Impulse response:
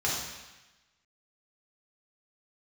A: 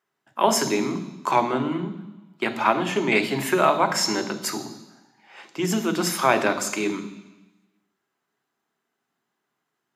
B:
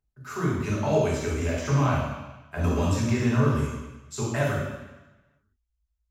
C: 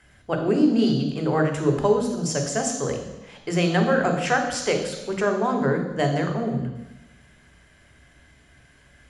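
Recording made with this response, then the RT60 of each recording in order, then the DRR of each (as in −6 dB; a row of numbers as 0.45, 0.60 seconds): B; 1.1, 1.1, 1.1 seconds; 10.0, −5.0, 4.5 decibels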